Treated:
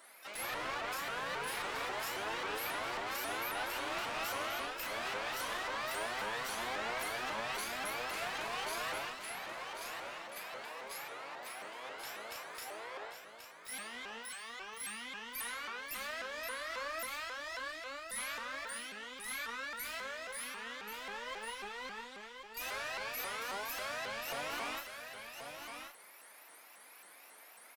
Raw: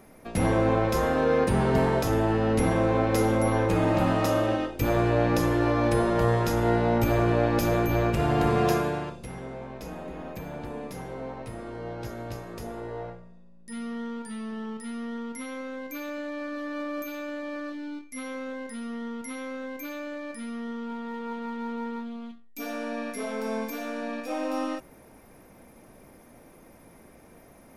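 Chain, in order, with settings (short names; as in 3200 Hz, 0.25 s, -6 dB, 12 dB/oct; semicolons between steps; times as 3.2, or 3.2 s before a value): HPF 1300 Hz 12 dB/oct; notch 5900 Hz, Q 5.9; limiter -31.5 dBFS, peak gain reduction 11 dB; harmoniser +12 st -10 dB; flange 1.3 Hz, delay 2.2 ms, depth 7.9 ms, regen +41%; one-sided clip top -48.5 dBFS; doubler 39 ms -3.5 dB; echo 1.083 s -7 dB; shaped vibrato saw up 3.7 Hz, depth 250 cents; gain +5.5 dB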